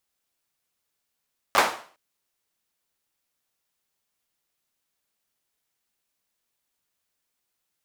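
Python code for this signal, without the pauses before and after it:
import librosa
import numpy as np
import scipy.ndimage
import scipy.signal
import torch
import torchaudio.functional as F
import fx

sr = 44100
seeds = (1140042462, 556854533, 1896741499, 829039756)

y = fx.drum_clap(sr, seeds[0], length_s=0.41, bursts=4, spacing_ms=10, hz=870.0, decay_s=0.44)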